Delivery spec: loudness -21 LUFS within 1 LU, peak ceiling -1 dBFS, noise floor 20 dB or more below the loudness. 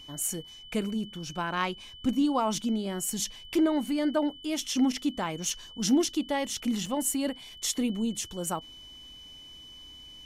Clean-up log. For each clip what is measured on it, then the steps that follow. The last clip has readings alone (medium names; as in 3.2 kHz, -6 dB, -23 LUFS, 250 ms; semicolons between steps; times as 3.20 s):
dropouts 1; longest dropout 3.4 ms; steady tone 3 kHz; tone level -46 dBFS; loudness -29.5 LUFS; peak level -14.5 dBFS; loudness target -21.0 LUFS
-> interpolate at 6.86 s, 3.4 ms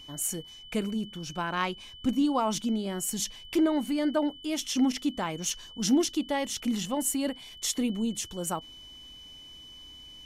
dropouts 0; steady tone 3 kHz; tone level -46 dBFS
-> band-stop 3 kHz, Q 30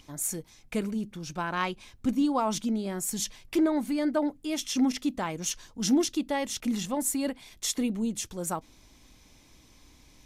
steady tone not found; loudness -30.0 LUFS; peak level -14.5 dBFS; loudness target -21.0 LUFS
-> trim +9 dB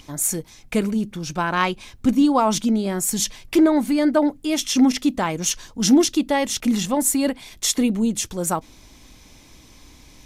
loudness -21.0 LUFS; peak level -5.5 dBFS; noise floor -49 dBFS